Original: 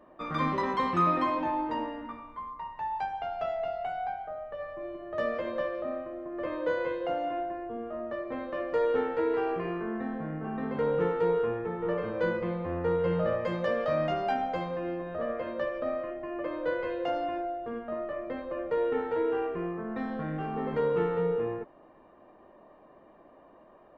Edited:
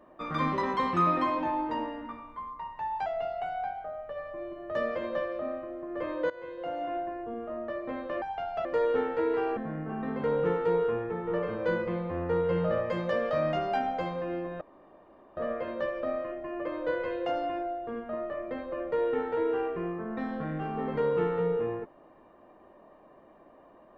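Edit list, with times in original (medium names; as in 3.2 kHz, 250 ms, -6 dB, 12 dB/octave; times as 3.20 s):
3.06–3.49 s: move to 8.65 s
6.73–7.42 s: fade in, from -17.5 dB
9.57–10.12 s: delete
15.16 s: insert room tone 0.76 s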